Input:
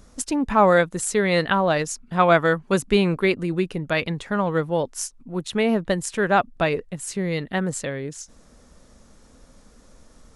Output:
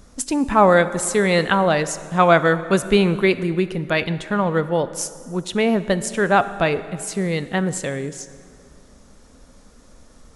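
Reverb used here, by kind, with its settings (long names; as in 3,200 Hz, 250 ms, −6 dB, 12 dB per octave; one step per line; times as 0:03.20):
dense smooth reverb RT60 2.3 s, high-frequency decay 0.7×, DRR 13 dB
level +2.5 dB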